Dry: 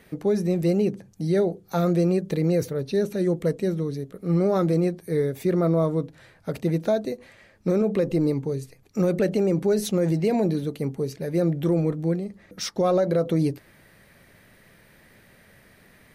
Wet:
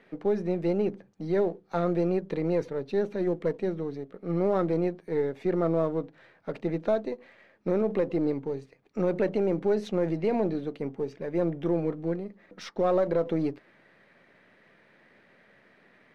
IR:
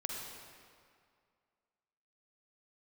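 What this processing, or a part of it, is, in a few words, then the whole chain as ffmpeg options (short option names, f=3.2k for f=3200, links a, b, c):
crystal radio: -filter_complex "[0:a]highpass=230,lowpass=2.8k,aeval=exprs='if(lt(val(0),0),0.708*val(0),val(0))':c=same,asettb=1/sr,asplit=3[a][b][c];[a]atrim=end=10.804[d];[b]atrim=start=10.8:end=11.72,asetpts=PTS-STARTPTS,afade=t=in:d=0.004:c=qsin,afade=t=out:st=0.916:d=0.004:c=qsin,bandreject=f=4.2k:w=9.1[e];[c]atrim=start=11.716[f];[d][e]acrossfade=d=0.004:c1=hsin:c2=qsin[g];[g][f]acrossfade=d=0.004:c1=qsin:c2=hsin,volume=-1.5dB"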